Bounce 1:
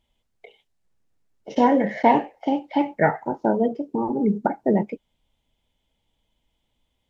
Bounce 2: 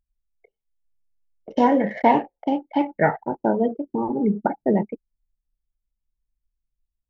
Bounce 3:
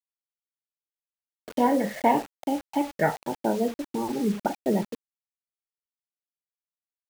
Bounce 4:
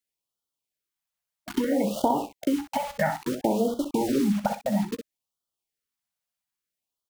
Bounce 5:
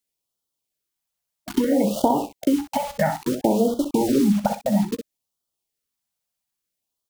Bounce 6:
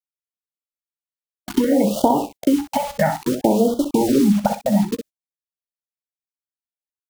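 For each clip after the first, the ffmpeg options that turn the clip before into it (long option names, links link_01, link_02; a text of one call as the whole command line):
ffmpeg -i in.wav -af "anlmdn=10" out.wav
ffmpeg -i in.wav -af "acrusher=bits=5:mix=0:aa=0.000001,volume=-4.5dB" out.wav
ffmpeg -i in.wav -af "acompressor=threshold=-28dB:ratio=6,aecho=1:1:15|63:0.211|0.355,afftfilt=real='re*(1-between(b*sr/1024,320*pow(2100/320,0.5+0.5*sin(2*PI*0.6*pts/sr))/1.41,320*pow(2100/320,0.5+0.5*sin(2*PI*0.6*pts/sr))*1.41))':imag='im*(1-between(b*sr/1024,320*pow(2100/320,0.5+0.5*sin(2*PI*0.6*pts/sr))/1.41,320*pow(2100/320,0.5+0.5*sin(2*PI*0.6*pts/sr))*1.41))':win_size=1024:overlap=0.75,volume=7.5dB" out.wav
ffmpeg -i in.wav -af "equalizer=frequency=1700:width_type=o:width=1.8:gain=-5.5,volume=5.5dB" out.wav
ffmpeg -i in.wav -af "agate=range=-25dB:threshold=-39dB:ratio=16:detection=peak,volume=3dB" out.wav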